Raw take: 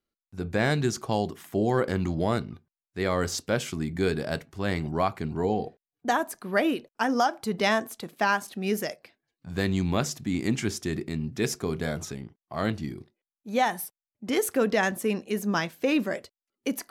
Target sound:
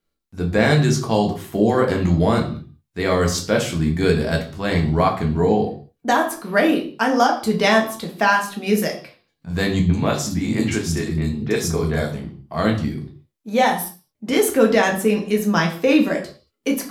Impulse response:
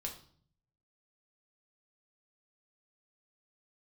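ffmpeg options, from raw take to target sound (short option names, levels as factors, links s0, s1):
-filter_complex "[0:a]asettb=1/sr,asplit=3[s0][s1][s2];[s0]atrim=end=9.794[s3];[s1]atrim=start=9.79:end=12.14,asetpts=PTS-STARTPTS,afade=t=in:d=0.004:c=qsin,afade=t=out:st=2.346:d=0.004:c=qsin,acrossover=split=220|3400[s4][s5][s6];[s5]adelay=100[s7];[s6]adelay=140[s8];[s4][s7][s8]amix=inputs=3:normalize=0,atrim=end_sample=103635[s9];[s2]atrim=start=12.136[s10];[s3][s9]acrossfade=d=0.004:c1=hsin:c2=qsin[s11];[s11][s10]acrossfade=d=0.004:c1=qsin:c2=hsin[s12];[1:a]atrim=start_sample=2205,afade=t=out:st=0.29:d=0.01,atrim=end_sample=13230[s13];[s12][s13]afir=irnorm=-1:irlink=0,volume=2.82"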